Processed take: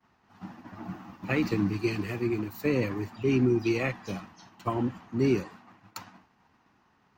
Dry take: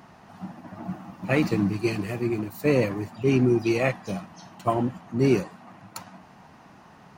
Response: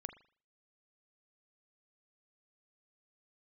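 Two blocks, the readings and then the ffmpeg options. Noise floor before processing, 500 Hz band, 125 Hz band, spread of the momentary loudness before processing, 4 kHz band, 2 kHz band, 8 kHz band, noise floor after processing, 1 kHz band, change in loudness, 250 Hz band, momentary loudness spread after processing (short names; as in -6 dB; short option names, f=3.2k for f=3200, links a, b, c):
-51 dBFS, -5.0 dB, -4.0 dB, 19 LU, -3.0 dB, -3.5 dB, -5.5 dB, -67 dBFS, -6.0 dB, -3.5 dB, -3.0 dB, 20 LU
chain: -filter_complex "[0:a]equalizer=f=160:t=o:w=0.67:g=-8,equalizer=f=630:t=o:w=0.67:g=-8,equalizer=f=10k:t=o:w=0.67:g=-11,agate=range=-33dB:threshold=-44dB:ratio=3:detection=peak,acrossover=split=300[a][b];[b]acompressor=threshold=-27dB:ratio=4[c];[a][c]amix=inputs=2:normalize=0"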